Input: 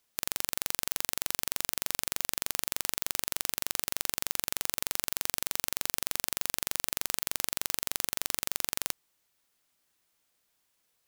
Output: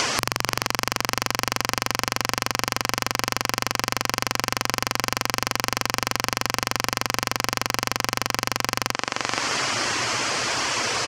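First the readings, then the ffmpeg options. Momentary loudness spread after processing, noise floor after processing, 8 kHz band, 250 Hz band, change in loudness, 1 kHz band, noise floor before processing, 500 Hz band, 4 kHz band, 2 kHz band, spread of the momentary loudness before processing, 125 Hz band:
2 LU, -45 dBFS, +5.5 dB, +16.5 dB, +7.0 dB, +18.5 dB, -76 dBFS, +16.0 dB, +11.0 dB, +15.0 dB, 0 LU, +18.5 dB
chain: -filter_complex "[0:a]afftfilt=real='re*gte(hypot(re,im),0.0000891)':imag='im*gte(hypot(re,im),0.0000891)':win_size=1024:overlap=0.75,acompressor=threshold=0.0112:ratio=4,highpass=110,equalizer=f=120:t=q:w=4:g=7,equalizer=f=180:t=q:w=4:g=-10,equalizer=f=1100:t=q:w=4:g=4,equalizer=f=3700:t=q:w=4:g=-9,lowpass=f=6000:w=0.5412,lowpass=f=6000:w=1.3066,acompressor=mode=upward:threshold=0.002:ratio=2.5,asplit=2[s0][s1];[s1]adelay=476,lowpass=f=3700:p=1,volume=0.188,asplit=2[s2][s3];[s3]adelay=476,lowpass=f=3700:p=1,volume=0.34,asplit=2[s4][s5];[s5]adelay=476,lowpass=f=3700:p=1,volume=0.34[s6];[s2][s4][s6]amix=inputs=3:normalize=0[s7];[s0][s7]amix=inputs=2:normalize=0,aeval=exprs='0.126*sin(PI/2*3.55*val(0)/0.126)':c=same,alimiter=level_in=28.2:limit=0.891:release=50:level=0:latency=1,volume=0.891"

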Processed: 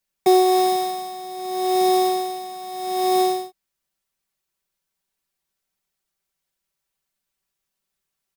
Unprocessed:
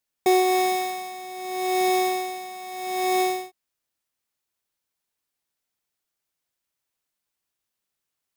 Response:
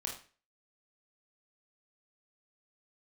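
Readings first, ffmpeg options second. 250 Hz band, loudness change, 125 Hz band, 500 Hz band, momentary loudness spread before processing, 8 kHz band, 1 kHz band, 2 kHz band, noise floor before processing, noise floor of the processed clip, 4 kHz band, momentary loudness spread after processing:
+4.5 dB, +3.5 dB, no reading, +4.5 dB, 14 LU, +0.5 dB, +3.5 dB, -7.5 dB, -83 dBFS, -81 dBFS, +3.0 dB, 15 LU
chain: -filter_complex "[0:a]aecho=1:1:5.2:0.73,acrossover=split=130[s0][s1];[s0]acontrast=73[s2];[s2][s1]amix=inputs=2:normalize=0"

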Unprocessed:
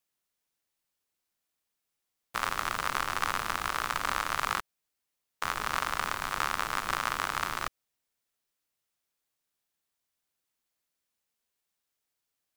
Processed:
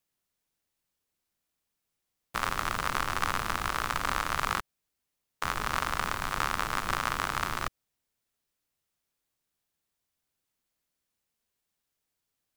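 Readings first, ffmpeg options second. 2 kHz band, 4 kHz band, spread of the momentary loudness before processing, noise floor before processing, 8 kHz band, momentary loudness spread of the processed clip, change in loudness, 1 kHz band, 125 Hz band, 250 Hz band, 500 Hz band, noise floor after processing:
0.0 dB, 0.0 dB, 4 LU, -84 dBFS, 0.0 dB, 4 LU, +0.5 dB, +0.5 dB, +6.5 dB, +4.5 dB, +1.5 dB, -84 dBFS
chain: -af "lowshelf=f=290:g=7.5"

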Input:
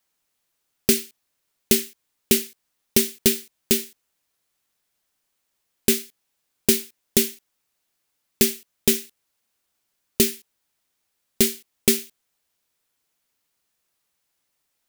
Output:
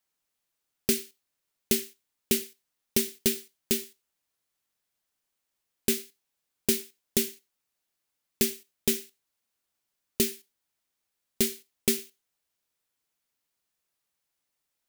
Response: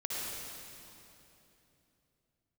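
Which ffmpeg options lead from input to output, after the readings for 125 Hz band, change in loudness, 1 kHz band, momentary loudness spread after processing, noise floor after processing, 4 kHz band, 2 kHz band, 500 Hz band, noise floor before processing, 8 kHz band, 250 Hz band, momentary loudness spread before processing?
-7.0 dB, -7.0 dB, -7.0 dB, 7 LU, -83 dBFS, -7.0 dB, -7.0 dB, -7.0 dB, -76 dBFS, -7.0 dB, -7.0 dB, 6 LU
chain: -filter_complex "[0:a]asplit=2[s0][s1];[1:a]atrim=start_sample=2205,afade=t=out:st=0.15:d=0.01,atrim=end_sample=7056,adelay=21[s2];[s1][s2]afir=irnorm=-1:irlink=0,volume=0.075[s3];[s0][s3]amix=inputs=2:normalize=0,volume=0.447"

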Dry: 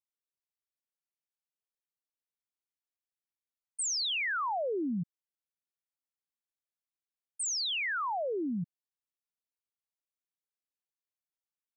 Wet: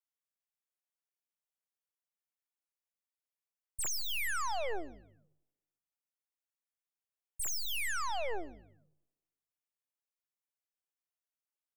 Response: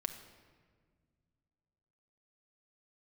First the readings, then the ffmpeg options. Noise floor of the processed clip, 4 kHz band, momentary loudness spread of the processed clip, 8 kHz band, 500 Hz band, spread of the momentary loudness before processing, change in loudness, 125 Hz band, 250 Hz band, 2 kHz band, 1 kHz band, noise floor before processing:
under -85 dBFS, -6.5 dB, 11 LU, -3.0 dB, -5.5 dB, 9 LU, -4.0 dB, -12.5 dB, -16.5 dB, -4.0 dB, -3.5 dB, under -85 dBFS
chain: -filter_complex "[0:a]highpass=f=430:w=0.5412,highpass=f=430:w=1.3066,aeval=exprs='0.0376*(cos(1*acos(clip(val(0)/0.0376,-1,1)))-cos(1*PI/2))+0.00531*(cos(2*acos(clip(val(0)/0.0376,-1,1)))-cos(2*PI/2))+0.00106*(cos(5*acos(clip(val(0)/0.0376,-1,1)))-cos(5*PI/2))+0.0168*(cos(6*acos(clip(val(0)/0.0376,-1,1)))-cos(6*PI/2))+0.000841*(cos(8*acos(clip(val(0)/0.0376,-1,1)))-cos(8*PI/2))':c=same,equalizer=f=4100:t=o:w=0.46:g=-7.5,asplit=4[s0][s1][s2][s3];[s1]adelay=148,afreqshift=-51,volume=0.106[s4];[s2]adelay=296,afreqshift=-102,volume=0.0394[s5];[s3]adelay=444,afreqshift=-153,volume=0.0145[s6];[s0][s4][s5][s6]amix=inputs=4:normalize=0,asplit=2[s7][s8];[1:a]atrim=start_sample=2205,asetrate=88200,aresample=44100[s9];[s8][s9]afir=irnorm=-1:irlink=0,volume=0.168[s10];[s7][s10]amix=inputs=2:normalize=0,volume=0.596"

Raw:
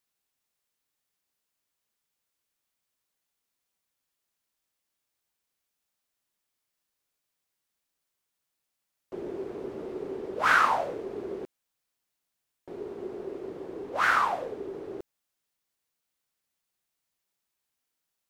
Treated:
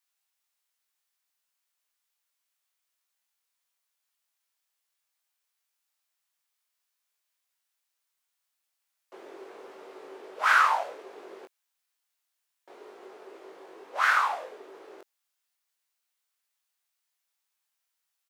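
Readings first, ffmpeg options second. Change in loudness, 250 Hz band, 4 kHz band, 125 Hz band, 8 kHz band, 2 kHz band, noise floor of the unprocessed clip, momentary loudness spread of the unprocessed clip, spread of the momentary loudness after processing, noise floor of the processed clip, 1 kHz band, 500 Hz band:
+4.5 dB, -14.0 dB, +1.0 dB, under -25 dB, +1.5 dB, +1.0 dB, -83 dBFS, 18 LU, 18 LU, -82 dBFS, +0.5 dB, -8.0 dB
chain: -filter_complex "[0:a]highpass=810,asplit=2[s0][s1];[s1]adelay=21,volume=0.631[s2];[s0][s2]amix=inputs=2:normalize=0"

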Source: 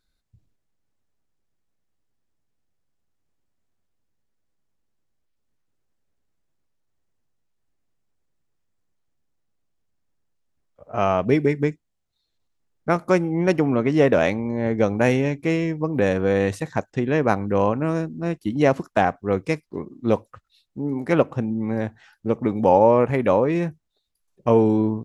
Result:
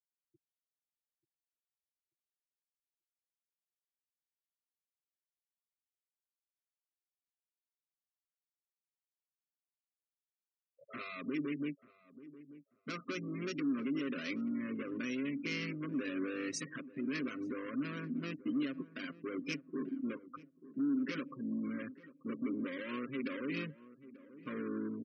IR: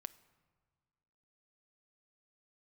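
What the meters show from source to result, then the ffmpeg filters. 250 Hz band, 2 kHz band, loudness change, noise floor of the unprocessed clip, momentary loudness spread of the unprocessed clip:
-13.5 dB, -13.5 dB, -17.5 dB, -75 dBFS, 10 LU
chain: -filter_complex "[0:a]afftdn=nr=14:nf=-39,tremolo=f=49:d=0.462,aecho=1:1:7.5:0.96,acompressor=threshold=0.0398:ratio=2,alimiter=limit=0.0794:level=0:latency=1:release=88,asoftclip=type=tanh:threshold=0.02,crystalizer=i=6.5:c=0,aeval=exprs='val(0)*gte(abs(val(0)),0.00282)':c=same,afftfilt=real='re*gte(hypot(re,im),0.01)':imag='im*gte(hypot(re,im),0.01)':win_size=1024:overlap=0.75,asuperstop=centerf=800:order=4:qfactor=0.69,highpass=f=200:w=0.5412,highpass=f=200:w=1.3066,equalizer=f=280:t=q:w=4:g=7,equalizer=f=430:t=q:w=4:g=-3,equalizer=f=710:t=q:w=4:g=5,equalizer=f=1100:t=q:w=4:g=9,equalizer=f=1800:t=q:w=4:g=-4,equalizer=f=3500:t=q:w=4:g=-8,lowpass=f=5800:w=0.5412,lowpass=f=5800:w=1.3066,asplit=2[s0][s1];[s1]adelay=887,lowpass=f=870:p=1,volume=0.158,asplit=2[s2][s3];[s3]adelay=887,lowpass=f=870:p=1,volume=0.31,asplit=2[s4][s5];[s5]adelay=887,lowpass=f=870:p=1,volume=0.31[s6];[s2][s4][s6]amix=inputs=3:normalize=0[s7];[s0][s7]amix=inputs=2:normalize=0"

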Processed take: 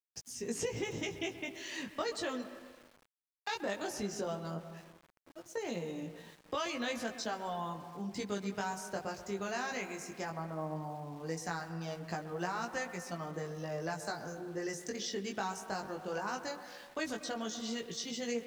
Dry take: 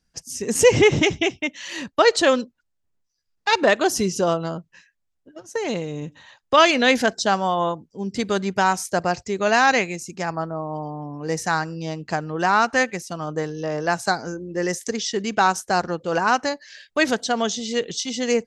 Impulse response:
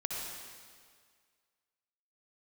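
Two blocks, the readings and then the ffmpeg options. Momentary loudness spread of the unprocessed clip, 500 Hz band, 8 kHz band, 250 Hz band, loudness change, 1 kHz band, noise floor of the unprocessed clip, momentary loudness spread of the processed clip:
13 LU, -18.0 dB, -15.0 dB, -15.0 dB, -17.5 dB, -18.5 dB, -74 dBFS, 6 LU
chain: -filter_complex "[0:a]acrossover=split=160|6000[s0][s1][s2];[s0]acompressor=threshold=0.01:ratio=4[s3];[s1]acompressor=threshold=0.0501:ratio=4[s4];[s2]acompressor=threshold=0.0112:ratio=4[s5];[s3][s4][s5]amix=inputs=3:normalize=0,flanger=delay=17:depth=3.4:speed=0.16,asplit=2[s6][s7];[1:a]atrim=start_sample=2205,lowpass=2600,adelay=129[s8];[s7][s8]afir=irnorm=-1:irlink=0,volume=0.237[s9];[s6][s9]amix=inputs=2:normalize=0,aeval=exprs='val(0)*gte(abs(val(0)),0.00398)':c=same,volume=0.447"

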